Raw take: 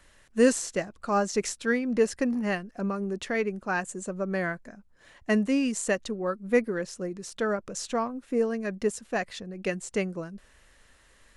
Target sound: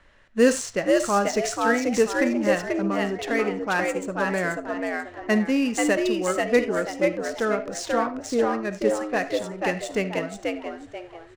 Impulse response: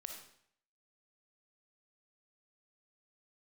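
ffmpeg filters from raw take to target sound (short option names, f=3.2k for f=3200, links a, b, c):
-filter_complex "[0:a]asplit=5[a][b][c][d][e];[b]adelay=487,afreqshift=85,volume=-3dB[f];[c]adelay=974,afreqshift=170,volume=-12.6dB[g];[d]adelay=1461,afreqshift=255,volume=-22.3dB[h];[e]adelay=1948,afreqshift=340,volume=-31.9dB[i];[a][f][g][h][i]amix=inputs=5:normalize=0,asplit=2[j][k];[1:a]atrim=start_sample=2205,atrim=end_sample=4410,lowshelf=f=340:g=-7.5[l];[k][l]afir=irnorm=-1:irlink=0,volume=4.5dB[m];[j][m]amix=inputs=2:normalize=0,adynamicsmooth=sensitivity=6.5:basefreq=3.2k,volume=-1.5dB"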